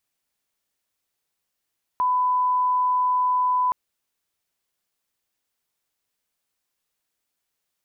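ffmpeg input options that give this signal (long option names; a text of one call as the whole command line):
ffmpeg -f lavfi -i "sine=frequency=1000:duration=1.72:sample_rate=44100,volume=0.06dB" out.wav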